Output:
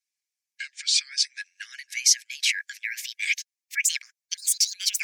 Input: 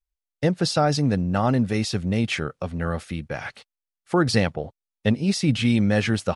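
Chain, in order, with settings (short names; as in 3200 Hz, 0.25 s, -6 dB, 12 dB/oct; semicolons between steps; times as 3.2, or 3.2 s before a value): speed glide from 64% -> 188%; in parallel at +1.5 dB: negative-ratio compressor -30 dBFS, ratio -1; on the sum: rippled Chebyshev high-pass 1600 Hz, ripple 9 dB; harmonic-percussive split harmonic -13 dB; gain +5 dB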